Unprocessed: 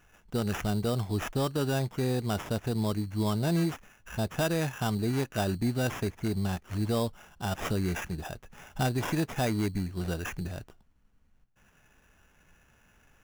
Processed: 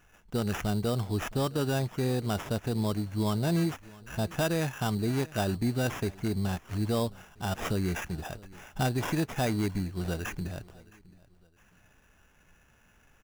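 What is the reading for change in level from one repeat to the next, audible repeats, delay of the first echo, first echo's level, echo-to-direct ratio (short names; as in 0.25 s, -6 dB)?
-9.0 dB, 2, 0.666 s, -22.0 dB, -21.5 dB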